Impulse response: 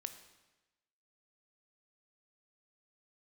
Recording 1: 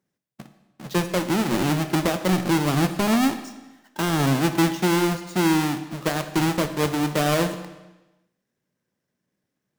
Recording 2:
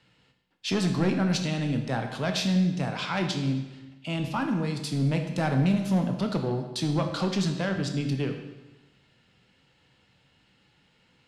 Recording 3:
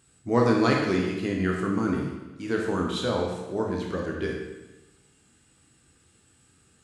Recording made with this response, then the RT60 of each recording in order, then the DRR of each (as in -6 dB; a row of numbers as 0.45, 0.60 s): 1; 1.1, 1.1, 1.1 s; 8.5, 4.5, -1.0 dB